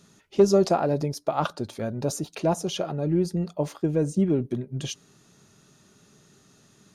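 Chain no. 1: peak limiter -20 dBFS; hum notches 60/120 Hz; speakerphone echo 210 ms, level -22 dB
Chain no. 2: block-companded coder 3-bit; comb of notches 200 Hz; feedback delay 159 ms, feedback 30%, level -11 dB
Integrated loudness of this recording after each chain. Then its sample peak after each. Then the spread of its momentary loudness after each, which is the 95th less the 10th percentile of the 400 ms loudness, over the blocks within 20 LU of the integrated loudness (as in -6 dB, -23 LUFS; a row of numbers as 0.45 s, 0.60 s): -30.5 LUFS, -27.5 LUFS; -18.5 dBFS, -9.5 dBFS; 6 LU, 9 LU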